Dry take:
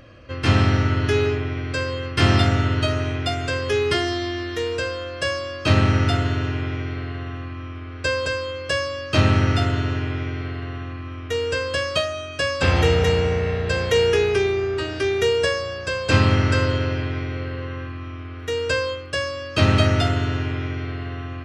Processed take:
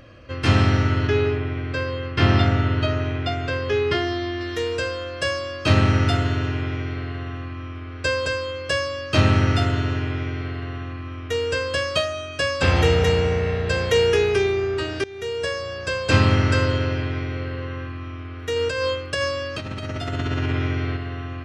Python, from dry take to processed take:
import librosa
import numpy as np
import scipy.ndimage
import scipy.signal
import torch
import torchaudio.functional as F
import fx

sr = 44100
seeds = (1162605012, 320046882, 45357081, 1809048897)

y = fx.air_absorb(x, sr, metres=150.0, at=(1.07, 4.41))
y = fx.over_compress(y, sr, threshold_db=-25.0, ratio=-1.0, at=(18.56, 20.97))
y = fx.edit(y, sr, fx.fade_in_from(start_s=15.04, length_s=0.81, floor_db=-21.5), tone=tone)